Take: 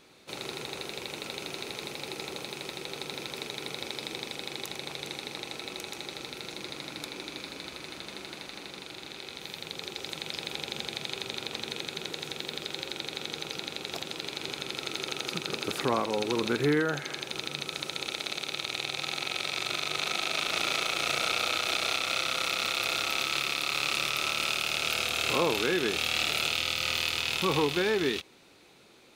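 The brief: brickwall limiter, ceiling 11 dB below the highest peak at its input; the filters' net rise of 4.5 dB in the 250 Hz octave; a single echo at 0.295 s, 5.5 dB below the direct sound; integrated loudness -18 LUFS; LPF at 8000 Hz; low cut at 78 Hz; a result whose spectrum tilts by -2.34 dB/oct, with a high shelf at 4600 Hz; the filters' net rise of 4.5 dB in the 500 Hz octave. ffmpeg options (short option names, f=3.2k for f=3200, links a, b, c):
-af "highpass=78,lowpass=8k,equalizer=f=250:t=o:g=4.5,equalizer=f=500:t=o:g=4,highshelf=f=4.6k:g=7.5,alimiter=limit=-21dB:level=0:latency=1,aecho=1:1:295:0.531,volume=14.5dB"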